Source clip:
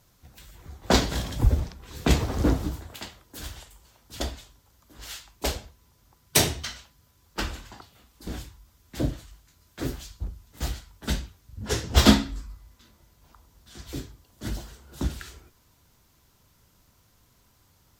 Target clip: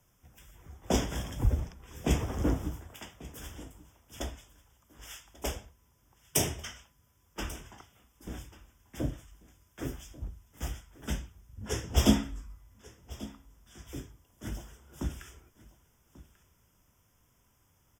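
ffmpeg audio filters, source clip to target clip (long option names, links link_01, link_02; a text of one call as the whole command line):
ffmpeg -i in.wav -filter_complex "[0:a]acrossover=split=170|980|2300[link_01][link_02][link_03][link_04];[link_03]aeval=exprs='0.0168*(abs(mod(val(0)/0.0168+3,4)-2)-1)':channel_layout=same[link_05];[link_01][link_02][link_05][link_04]amix=inputs=4:normalize=0,asuperstop=centerf=4200:order=8:qfactor=2.8,aecho=1:1:1140:0.112,volume=-6dB" out.wav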